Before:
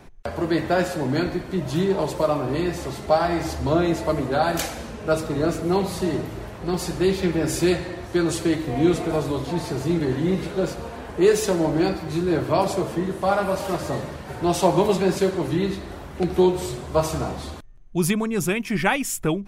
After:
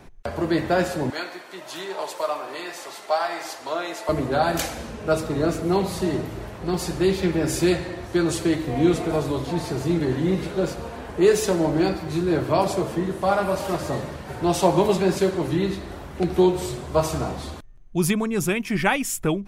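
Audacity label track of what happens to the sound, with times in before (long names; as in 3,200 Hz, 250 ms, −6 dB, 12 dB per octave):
1.100000	4.090000	high-pass filter 740 Hz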